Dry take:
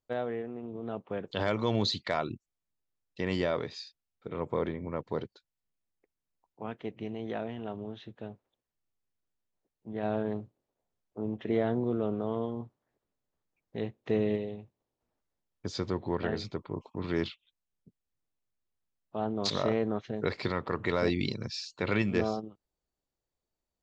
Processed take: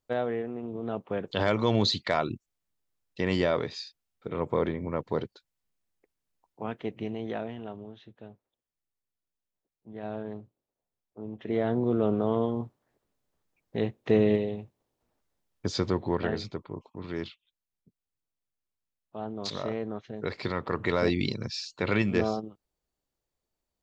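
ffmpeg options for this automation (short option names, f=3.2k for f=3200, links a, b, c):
-af "volume=21.5dB,afade=t=out:st=7.01:d=0.92:silence=0.354813,afade=t=in:st=11.31:d=0.8:silence=0.281838,afade=t=out:st=15.68:d=1.21:silence=0.316228,afade=t=in:st=20.11:d=0.66:silence=0.473151"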